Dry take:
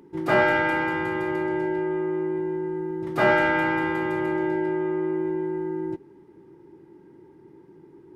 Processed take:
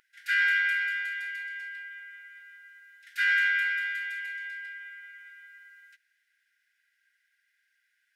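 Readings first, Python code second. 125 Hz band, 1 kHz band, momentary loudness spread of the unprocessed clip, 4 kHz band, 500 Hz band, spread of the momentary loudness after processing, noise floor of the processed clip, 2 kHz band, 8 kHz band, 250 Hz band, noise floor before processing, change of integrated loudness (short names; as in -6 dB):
under -40 dB, under -15 dB, 9 LU, +1.0 dB, under -40 dB, 21 LU, -75 dBFS, +1.0 dB, n/a, under -40 dB, -52 dBFS, -3.0 dB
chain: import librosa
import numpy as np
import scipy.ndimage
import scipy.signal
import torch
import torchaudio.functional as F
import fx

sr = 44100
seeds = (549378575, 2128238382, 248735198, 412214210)

y = fx.brickwall_highpass(x, sr, low_hz=1400.0)
y = y * librosa.db_to_amplitude(1.0)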